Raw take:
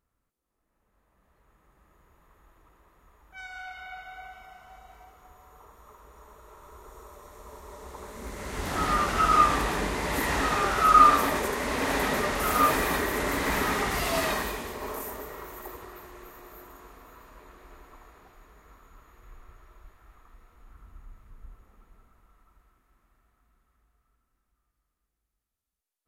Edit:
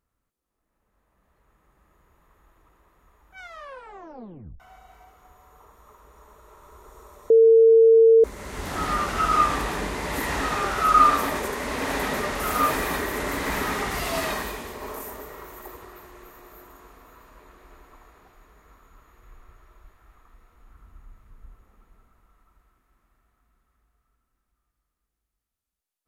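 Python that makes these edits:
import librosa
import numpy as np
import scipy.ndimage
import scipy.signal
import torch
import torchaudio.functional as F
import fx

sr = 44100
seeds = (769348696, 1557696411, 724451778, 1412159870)

y = fx.edit(x, sr, fx.tape_stop(start_s=3.39, length_s=1.21),
    fx.bleep(start_s=7.3, length_s=0.94, hz=452.0, db=-10.5), tone=tone)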